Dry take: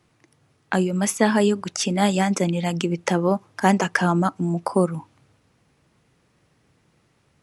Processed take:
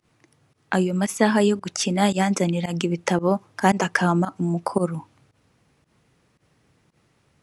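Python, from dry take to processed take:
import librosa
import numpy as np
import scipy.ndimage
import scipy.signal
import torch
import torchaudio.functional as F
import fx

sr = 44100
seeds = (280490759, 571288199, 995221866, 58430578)

y = fx.volume_shaper(x, sr, bpm=113, per_beat=1, depth_db=-20, release_ms=91.0, shape='fast start')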